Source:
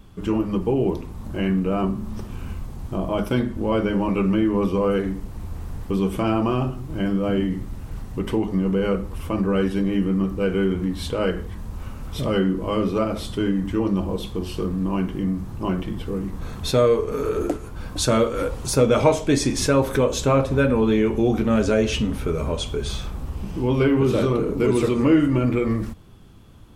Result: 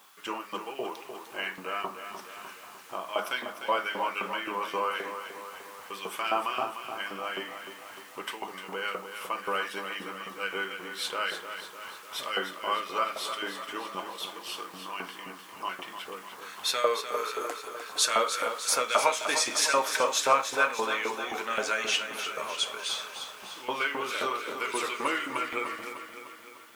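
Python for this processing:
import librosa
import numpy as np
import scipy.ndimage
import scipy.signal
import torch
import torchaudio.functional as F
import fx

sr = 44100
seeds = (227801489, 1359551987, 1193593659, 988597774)

p1 = fx.dmg_noise_colour(x, sr, seeds[0], colour='white', level_db=-61.0)
p2 = fx.filter_lfo_highpass(p1, sr, shape='saw_up', hz=3.8, low_hz=780.0, high_hz=2000.0, q=1.2)
y = p2 + fx.echo_feedback(p2, sr, ms=301, feedback_pct=57, wet_db=-9, dry=0)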